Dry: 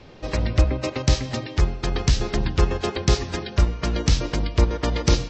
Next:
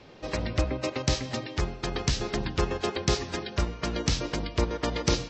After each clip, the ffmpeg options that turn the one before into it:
-af "lowshelf=f=99:g=-10.5,volume=-3dB"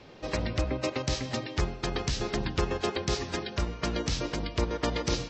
-af "alimiter=limit=-15.5dB:level=0:latency=1:release=130"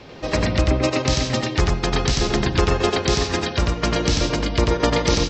-af "aecho=1:1:93:0.708,volume=9dB"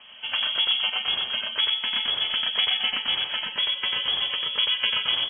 -af "lowpass=f=2.9k:t=q:w=0.5098,lowpass=f=2.9k:t=q:w=0.6013,lowpass=f=2.9k:t=q:w=0.9,lowpass=f=2.9k:t=q:w=2.563,afreqshift=-3400,volume=-6dB"

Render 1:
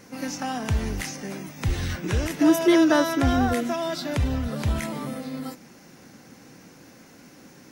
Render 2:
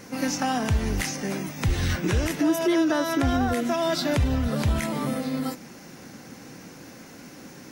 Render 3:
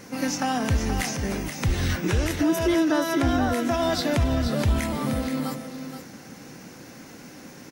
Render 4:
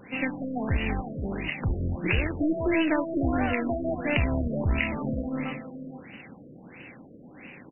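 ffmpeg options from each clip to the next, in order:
-af "alimiter=limit=-19.5dB:level=0:latency=1:release=287,volume=5dB"
-af "aecho=1:1:476:0.376"
-af "aeval=exprs='0.266*(cos(1*acos(clip(val(0)/0.266,-1,1)))-cos(1*PI/2))+0.0596*(cos(2*acos(clip(val(0)/0.266,-1,1)))-cos(2*PI/2))':c=same,aexciter=amount=7.2:drive=5.1:freq=2.1k,afftfilt=real='re*lt(b*sr/1024,640*pow(3000/640,0.5+0.5*sin(2*PI*1.5*pts/sr)))':imag='im*lt(b*sr/1024,640*pow(3000/640,0.5+0.5*sin(2*PI*1.5*pts/sr)))':win_size=1024:overlap=0.75,volume=-3.5dB"

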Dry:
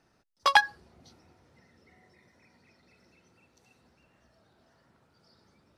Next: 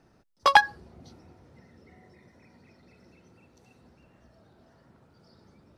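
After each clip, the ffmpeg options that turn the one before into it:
-af "tiltshelf=f=860:g=4.5,volume=4.5dB"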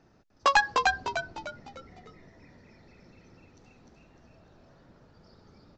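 -filter_complex "[0:a]aresample=16000,volume=16dB,asoftclip=hard,volume=-16dB,aresample=44100,asplit=6[a][b][c][d][e][f];[b]adelay=301,afreqshift=-77,volume=-3dB[g];[c]adelay=602,afreqshift=-154,volume=-10.5dB[h];[d]adelay=903,afreqshift=-231,volume=-18.1dB[i];[e]adelay=1204,afreqshift=-308,volume=-25.6dB[j];[f]adelay=1505,afreqshift=-385,volume=-33.1dB[k];[a][g][h][i][j][k]amix=inputs=6:normalize=0"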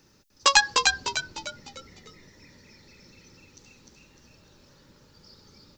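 -filter_complex "[0:a]acrossover=split=1700[a][b];[b]crystalizer=i=6:c=0[c];[a][c]amix=inputs=2:normalize=0,asuperstop=centerf=700:order=4:qfactor=4.4"

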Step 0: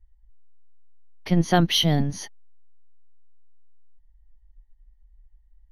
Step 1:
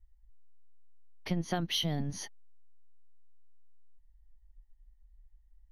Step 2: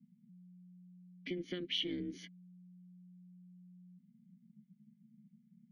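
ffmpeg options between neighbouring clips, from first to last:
-af "acompressor=threshold=-23dB:ratio=6,volume=-5dB"
-filter_complex "[0:a]aeval=exprs='val(0)*sin(2*PI*180*n/s)':c=same,asplit=3[a][b][c];[a]bandpass=f=270:t=q:w=8,volume=0dB[d];[b]bandpass=f=2.29k:t=q:w=8,volume=-6dB[e];[c]bandpass=f=3.01k:t=q:w=8,volume=-9dB[f];[d][e][f]amix=inputs=3:normalize=0,volume=10.5dB"

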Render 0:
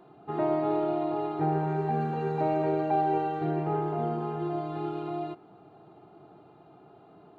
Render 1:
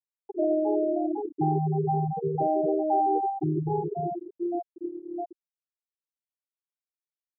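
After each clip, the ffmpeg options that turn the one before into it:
-filter_complex "[0:a]afftfilt=real='re*gte(hypot(re,im),0.2)':imag='im*gte(hypot(re,im),0.2)':win_size=1024:overlap=0.75,equalizer=f=3.3k:w=1.4:g=-5,asplit=2[a][b];[b]alimiter=level_in=2.5dB:limit=-24dB:level=0:latency=1:release=79,volume=-2.5dB,volume=-0.5dB[c];[a][c]amix=inputs=2:normalize=0"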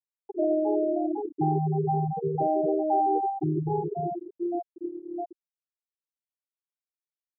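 -af anull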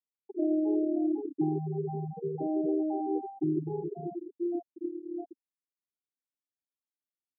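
-af "bandpass=f=270:t=q:w=3.2:csg=0,volume=4dB"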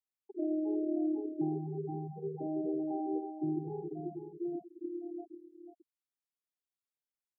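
-af "aecho=1:1:491:0.335,volume=-5.5dB"

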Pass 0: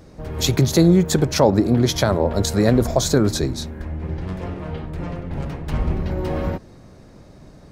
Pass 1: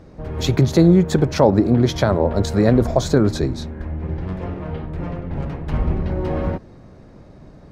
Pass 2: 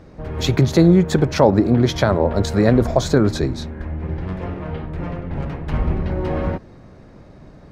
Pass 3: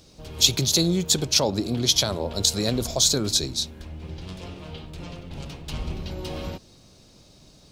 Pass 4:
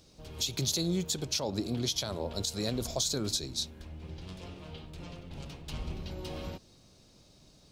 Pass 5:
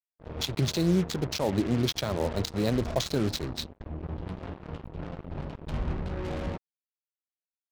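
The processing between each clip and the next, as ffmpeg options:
-af "lowpass=f=2.2k:p=1,volume=1.5dB"
-af "equalizer=f=2k:w=0.66:g=3"
-af "aexciter=amount=13.7:drive=2.9:freq=2.8k,volume=-11dB"
-af "alimiter=limit=-12dB:level=0:latency=1:release=192,volume=-7dB"
-af "adynamicsmooth=sensitivity=3:basefreq=1.1k,acrusher=bits=6:mix=0:aa=0.5,agate=range=-33dB:threshold=-44dB:ratio=3:detection=peak,volume=7dB"

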